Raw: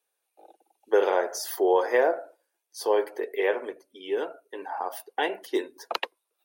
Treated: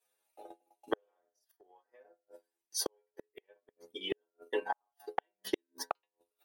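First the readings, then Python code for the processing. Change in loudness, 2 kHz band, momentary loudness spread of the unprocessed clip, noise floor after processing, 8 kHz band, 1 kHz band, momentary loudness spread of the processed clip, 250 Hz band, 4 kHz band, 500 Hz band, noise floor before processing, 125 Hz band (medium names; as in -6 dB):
-12.0 dB, -14.0 dB, 14 LU, under -85 dBFS, -3.0 dB, -12.0 dB, 20 LU, -11.0 dB, -5.0 dB, -17.0 dB, -81 dBFS, no reading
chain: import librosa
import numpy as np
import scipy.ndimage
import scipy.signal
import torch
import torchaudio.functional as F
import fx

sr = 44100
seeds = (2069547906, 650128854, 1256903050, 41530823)

y = fx.stiff_resonator(x, sr, f0_hz=62.0, decay_s=0.5, stiffness=0.008)
y = fx.gate_flip(y, sr, shuts_db=-35.0, range_db=-41)
y = fx.transient(y, sr, attack_db=8, sustain_db=-11)
y = y * 10.0 ** (9.0 / 20.0)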